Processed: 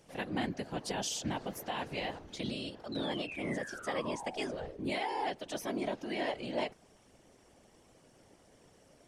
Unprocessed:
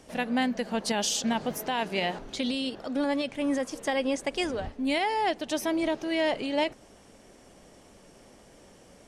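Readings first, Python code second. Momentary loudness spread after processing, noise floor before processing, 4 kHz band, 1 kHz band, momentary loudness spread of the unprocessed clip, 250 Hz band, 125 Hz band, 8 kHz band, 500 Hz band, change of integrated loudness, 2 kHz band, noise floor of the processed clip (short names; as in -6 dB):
4 LU, -55 dBFS, -8.0 dB, -7.5 dB, 5 LU, -9.5 dB, +0.5 dB, -8.5 dB, -8.0 dB, -8.5 dB, -7.5 dB, -64 dBFS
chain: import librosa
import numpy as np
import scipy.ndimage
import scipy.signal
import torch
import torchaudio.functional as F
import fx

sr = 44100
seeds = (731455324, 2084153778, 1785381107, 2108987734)

y = fx.spec_paint(x, sr, seeds[0], shape='fall', start_s=2.92, length_s=1.85, low_hz=440.0, high_hz=4100.0, level_db=-37.0)
y = fx.whisperise(y, sr, seeds[1])
y = y * 10.0 ** (-8.5 / 20.0)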